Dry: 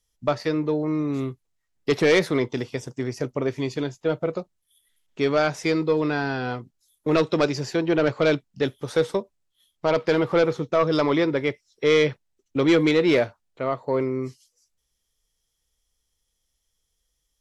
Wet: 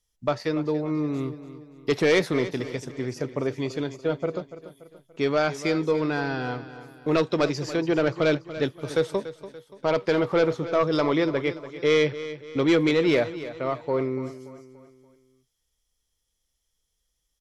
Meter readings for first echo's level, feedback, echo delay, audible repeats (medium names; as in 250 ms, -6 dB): -14.0 dB, 45%, 288 ms, 4